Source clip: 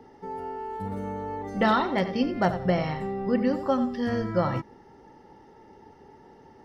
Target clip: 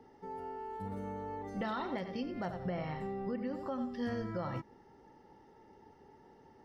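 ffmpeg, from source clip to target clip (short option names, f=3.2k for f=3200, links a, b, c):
-filter_complex "[0:a]asettb=1/sr,asplit=3[a][b][c];[a]atrim=end=2.604[d];[b]atrim=start=2.6:end=3.85,asetpts=PTS-STARTPTS,afade=t=in:d=0.004:c=qsin,afade=t=out:st=1.246:d=0.004:c=qsin,acrossover=split=3300[e][f];[f]acompressor=threshold=-55dB:ratio=4:attack=1:release=60[g];[e][g]amix=inputs=2:normalize=0[h];[c]atrim=start=3.846[i];[d][h]acrossfade=d=0.004:c1=hsin:c2=qsin[j];[j][i]acrossfade=d=0.004:c1=qsin:c2=hsin,alimiter=limit=-20dB:level=0:latency=1:release=192,volume=-8dB"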